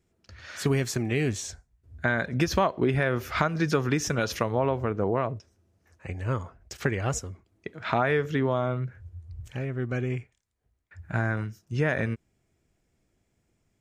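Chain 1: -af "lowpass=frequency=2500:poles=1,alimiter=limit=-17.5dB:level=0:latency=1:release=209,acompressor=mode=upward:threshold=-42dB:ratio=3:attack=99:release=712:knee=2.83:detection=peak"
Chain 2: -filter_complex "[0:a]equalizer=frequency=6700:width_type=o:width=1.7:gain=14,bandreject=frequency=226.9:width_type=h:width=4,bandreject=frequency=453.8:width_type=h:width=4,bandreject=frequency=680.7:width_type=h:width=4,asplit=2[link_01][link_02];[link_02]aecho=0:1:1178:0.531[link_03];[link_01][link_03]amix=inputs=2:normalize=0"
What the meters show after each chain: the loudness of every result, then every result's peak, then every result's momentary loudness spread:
−31.5, −25.5 LKFS; −15.0, −5.5 dBFS; 14, 13 LU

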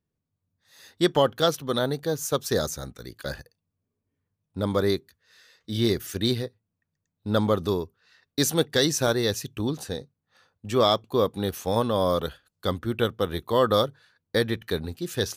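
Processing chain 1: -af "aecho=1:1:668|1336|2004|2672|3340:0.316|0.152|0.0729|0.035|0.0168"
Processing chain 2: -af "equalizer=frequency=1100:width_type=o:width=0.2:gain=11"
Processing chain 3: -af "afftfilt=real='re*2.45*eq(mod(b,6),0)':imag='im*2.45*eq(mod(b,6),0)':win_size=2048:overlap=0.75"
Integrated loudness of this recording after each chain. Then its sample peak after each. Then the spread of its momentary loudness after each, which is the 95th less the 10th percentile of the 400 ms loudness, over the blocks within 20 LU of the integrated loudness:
−26.0, −25.0, −27.5 LKFS; −8.0, −6.0, −4.5 dBFS; 14, 15, 14 LU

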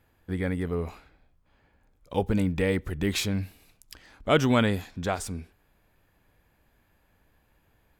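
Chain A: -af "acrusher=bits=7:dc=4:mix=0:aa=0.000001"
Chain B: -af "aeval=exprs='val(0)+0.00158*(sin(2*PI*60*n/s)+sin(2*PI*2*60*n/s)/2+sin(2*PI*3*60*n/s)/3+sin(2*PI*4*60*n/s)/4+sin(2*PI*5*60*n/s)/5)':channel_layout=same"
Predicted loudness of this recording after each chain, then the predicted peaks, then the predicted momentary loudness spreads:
−28.0, −28.0 LKFS; −8.5, −8.5 dBFS; 14, 14 LU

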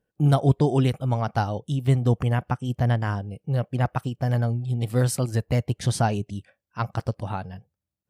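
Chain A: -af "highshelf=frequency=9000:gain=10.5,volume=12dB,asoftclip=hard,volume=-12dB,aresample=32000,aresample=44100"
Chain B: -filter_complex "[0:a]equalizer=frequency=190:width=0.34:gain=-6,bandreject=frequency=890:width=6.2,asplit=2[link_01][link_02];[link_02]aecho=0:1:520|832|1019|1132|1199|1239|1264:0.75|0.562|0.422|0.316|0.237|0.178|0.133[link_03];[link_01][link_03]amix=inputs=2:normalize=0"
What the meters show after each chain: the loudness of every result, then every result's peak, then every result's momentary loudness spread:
−25.0, −26.5 LKFS; −11.5, −9.0 dBFS; 11, 5 LU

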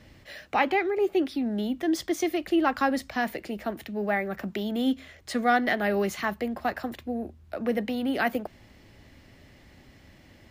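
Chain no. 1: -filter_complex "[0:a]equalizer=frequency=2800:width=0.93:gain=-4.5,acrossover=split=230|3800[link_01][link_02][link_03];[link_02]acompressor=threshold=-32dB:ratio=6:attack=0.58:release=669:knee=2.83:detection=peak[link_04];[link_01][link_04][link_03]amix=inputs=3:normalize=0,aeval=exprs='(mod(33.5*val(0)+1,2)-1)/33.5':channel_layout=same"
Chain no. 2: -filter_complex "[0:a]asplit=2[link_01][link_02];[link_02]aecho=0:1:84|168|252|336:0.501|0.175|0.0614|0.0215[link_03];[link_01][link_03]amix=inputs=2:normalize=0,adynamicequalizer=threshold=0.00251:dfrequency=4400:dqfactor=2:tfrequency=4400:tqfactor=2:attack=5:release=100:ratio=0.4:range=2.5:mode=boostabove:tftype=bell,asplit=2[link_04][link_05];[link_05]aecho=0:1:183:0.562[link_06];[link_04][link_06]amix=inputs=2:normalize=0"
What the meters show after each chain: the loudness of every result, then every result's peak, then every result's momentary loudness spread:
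−36.0, −25.5 LKFS; −30.5, −9.0 dBFS; 21, 10 LU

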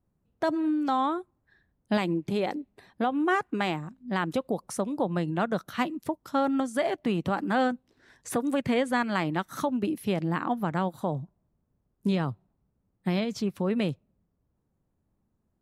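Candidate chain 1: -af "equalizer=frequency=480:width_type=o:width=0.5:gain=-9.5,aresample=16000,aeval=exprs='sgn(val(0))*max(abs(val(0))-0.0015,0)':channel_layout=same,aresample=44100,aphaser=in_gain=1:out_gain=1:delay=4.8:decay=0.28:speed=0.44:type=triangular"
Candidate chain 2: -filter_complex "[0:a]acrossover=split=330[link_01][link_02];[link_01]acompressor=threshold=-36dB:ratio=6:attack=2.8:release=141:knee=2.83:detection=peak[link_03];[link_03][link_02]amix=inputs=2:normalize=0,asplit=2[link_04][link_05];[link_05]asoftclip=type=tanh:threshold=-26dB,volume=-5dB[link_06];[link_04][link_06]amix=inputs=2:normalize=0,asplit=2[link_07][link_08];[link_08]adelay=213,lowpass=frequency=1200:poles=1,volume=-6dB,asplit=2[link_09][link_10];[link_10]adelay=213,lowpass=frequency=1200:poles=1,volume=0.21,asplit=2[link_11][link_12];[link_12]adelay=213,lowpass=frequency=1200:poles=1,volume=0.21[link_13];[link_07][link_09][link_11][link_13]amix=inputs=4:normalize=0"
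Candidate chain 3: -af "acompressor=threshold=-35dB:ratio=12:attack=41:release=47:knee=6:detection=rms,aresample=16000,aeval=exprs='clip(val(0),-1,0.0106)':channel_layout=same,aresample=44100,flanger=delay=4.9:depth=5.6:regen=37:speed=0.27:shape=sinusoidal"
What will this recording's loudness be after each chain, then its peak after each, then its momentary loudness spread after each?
−30.5, −27.5, −42.0 LKFS; −14.0, −11.5, −23.5 dBFS; 9, 11, 7 LU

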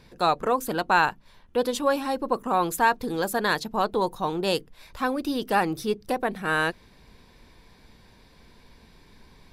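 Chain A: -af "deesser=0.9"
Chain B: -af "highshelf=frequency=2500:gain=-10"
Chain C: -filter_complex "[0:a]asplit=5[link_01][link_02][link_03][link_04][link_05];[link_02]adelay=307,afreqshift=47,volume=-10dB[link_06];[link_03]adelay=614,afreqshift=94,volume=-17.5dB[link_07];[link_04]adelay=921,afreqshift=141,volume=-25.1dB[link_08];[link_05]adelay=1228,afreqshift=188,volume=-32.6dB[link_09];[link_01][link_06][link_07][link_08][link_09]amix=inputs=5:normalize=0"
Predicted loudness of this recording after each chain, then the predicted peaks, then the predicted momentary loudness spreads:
−27.5, −27.0, −25.5 LKFS; −10.5, −10.0, −8.0 dBFS; 5, 6, 9 LU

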